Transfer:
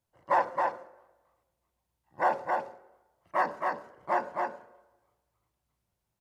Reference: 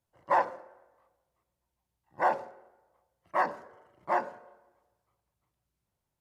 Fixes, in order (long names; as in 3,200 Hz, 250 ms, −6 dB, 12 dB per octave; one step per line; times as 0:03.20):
echo removal 270 ms −3.5 dB